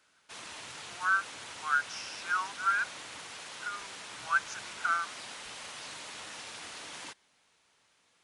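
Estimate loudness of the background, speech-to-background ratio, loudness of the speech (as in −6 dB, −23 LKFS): −42.5 LKFS, 10.0 dB, −32.5 LKFS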